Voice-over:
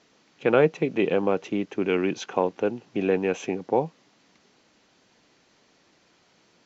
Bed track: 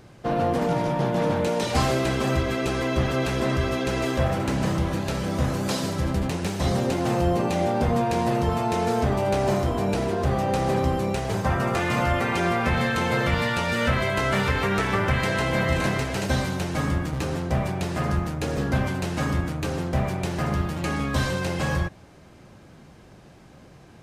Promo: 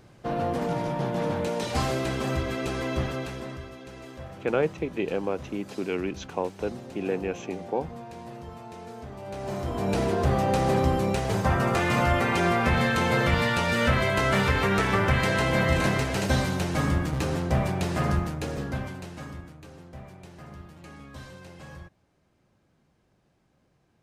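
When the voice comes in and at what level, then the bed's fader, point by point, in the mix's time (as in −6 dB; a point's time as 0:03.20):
4.00 s, −5.5 dB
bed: 0:03.00 −4.5 dB
0:03.74 −18 dB
0:09.12 −18 dB
0:09.99 0 dB
0:18.10 0 dB
0:19.65 −19 dB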